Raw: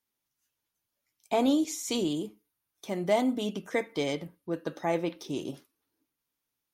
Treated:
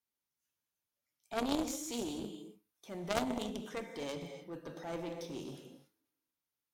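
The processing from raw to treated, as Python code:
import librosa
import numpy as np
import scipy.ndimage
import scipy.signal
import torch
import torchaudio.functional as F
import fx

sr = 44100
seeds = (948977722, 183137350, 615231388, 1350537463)

y = fx.transient(x, sr, attack_db=-4, sustain_db=4)
y = fx.rev_gated(y, sr, seeds[0], gate_ms=310, shape='flat', drr_db=5.5)
y = fx.clip_asym(y, sr, top_db=-31.5, bottom_db=-17.0)
y = fx.cheby_harmonics(y, sr, harmonics=(3, 5), levels_db=(-8, -22), full_scale_db=-16.5)
y = fx.dynamic_eq(y, sr, hz=1900.0, q=0.99, threshold_db=-58.0, ratio=4.0, max_db=-3)
y = y * 10.0 ** (5.5 / 20.0)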